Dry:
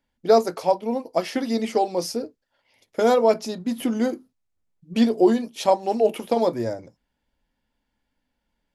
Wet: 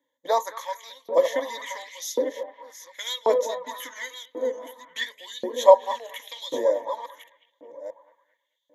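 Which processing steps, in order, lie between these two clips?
chunks repeated in reverse 608 ms, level -9.5 dB; rippled EQ curve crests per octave 1.1, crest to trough 18 dB; on a send: bucket-brigade echo 218 ms, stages 4096, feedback 62%, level -13 dB; on the sum: LFO high-pass saw up 0.92 Hz 350–4100 Hz; trim -5 dB

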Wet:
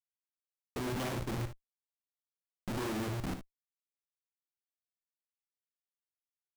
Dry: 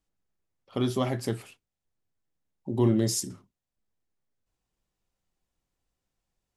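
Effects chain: LFO low-pass saw down 3 Hz 240–3200 Hz; peaking EQ 2.5 kHz +6 dB 0.31 oct; de-hum 117.7 Hz, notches 28; Schmitt trigger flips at -38 dBFS; early reflections 59 ms -10.5 dB, 74 ms -14 dB; trim -3.5 dB

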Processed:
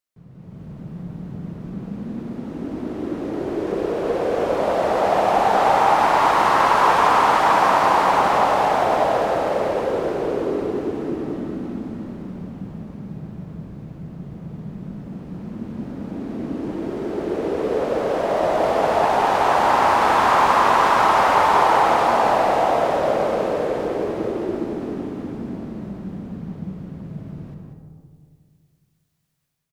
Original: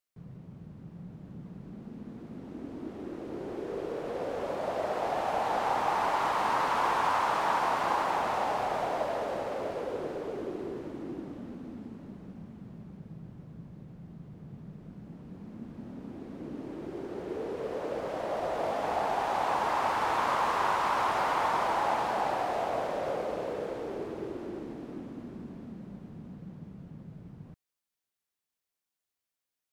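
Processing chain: level rider gain up to 10 dB; delay 191 ms -7.5 dB; algorithmic reverb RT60 2.1 s, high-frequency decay 0.25×, pre-delay 25 ms, DRR 3.5 dB

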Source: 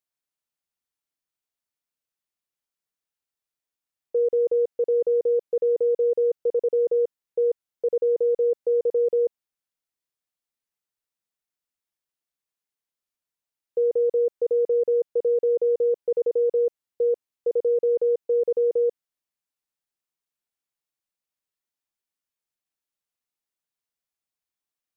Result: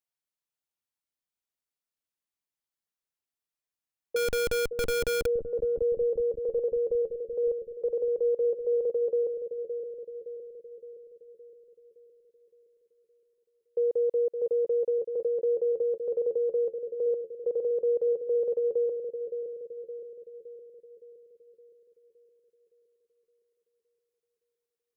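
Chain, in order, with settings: 4.16–5.26 s: Schmitt trigger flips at -45 dBFS; bucket-brigade echo 565 ms, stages 2048, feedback 57%, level -7 dB; trim -4.5 dB

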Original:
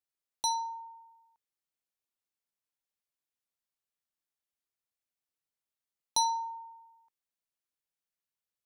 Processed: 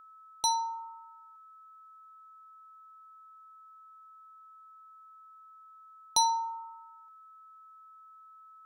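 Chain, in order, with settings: whistle 1.3 kHz -54 dBFS; trim +2.5 dB

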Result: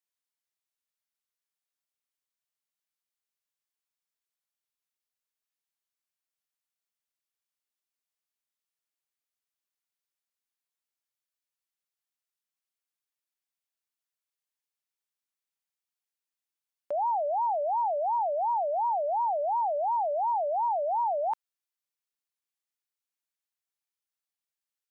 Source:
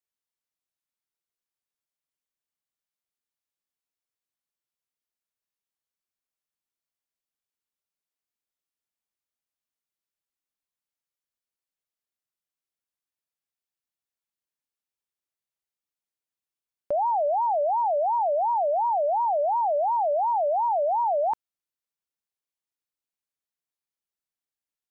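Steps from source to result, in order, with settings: high-pass 950 Hz 6 dB/octave

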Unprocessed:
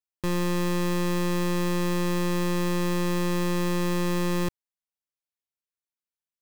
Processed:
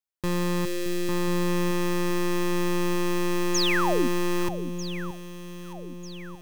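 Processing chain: 0.65–1.09 s: static phaser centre 390 Hz, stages 4; 3.54–4.08 s: painted sound fall 220–7100 Hz -26 dBFS; on a send: echo whose repeats swap between lows and highs 622 ms, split 960 Hz, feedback 67%, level -10 dB

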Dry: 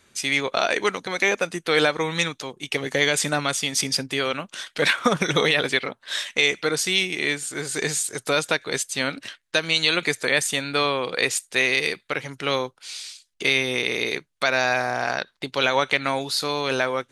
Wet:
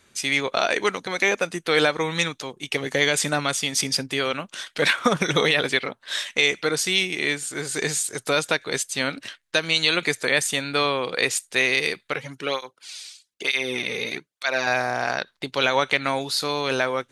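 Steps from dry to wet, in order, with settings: 12.16–14.67 s: cancelling through-zero flanger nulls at 1.1 Hz, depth 3.3 ms

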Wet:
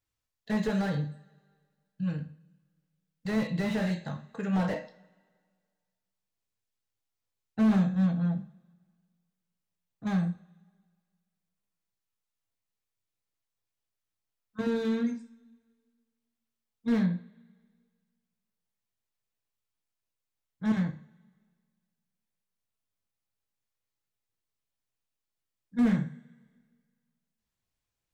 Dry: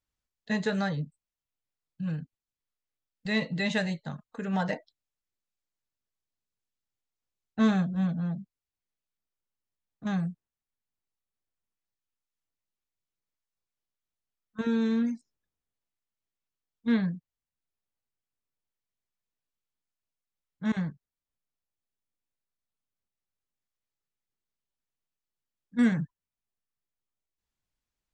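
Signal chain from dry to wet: two-slope reverb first 0.39 s, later 1.8 s, from -25 dB, DRR 4 dB; slew-rate limiter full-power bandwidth 28 Hz

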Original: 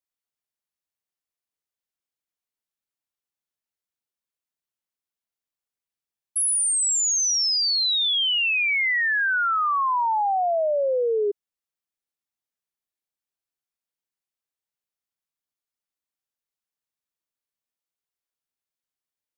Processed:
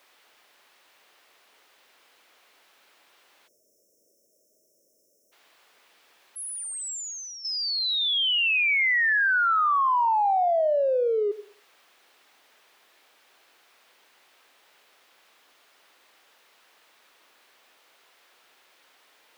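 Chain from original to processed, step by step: jump at every zero crossing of -45 dBFS; reverberation RT60 0.40 s, pre-delay 79 ms, DRR 15.5 dB; 3.48–5.32 s: spectral selection erased 650–5200 Hz; three-band isolator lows -23 dB, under 320 Hz, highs -15 dB, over 4 kHz; 6.39–7.45 s: compressor with a negative ratio -35 dBFS, ratio -0.5

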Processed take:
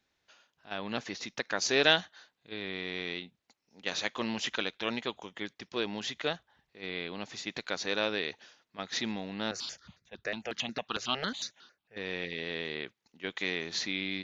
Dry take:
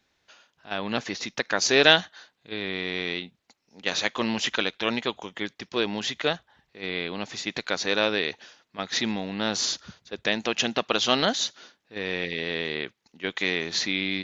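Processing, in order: 9.51–11.97 s: stepped phaser 11 Hz 900–3100 Hz; trim -7 dB

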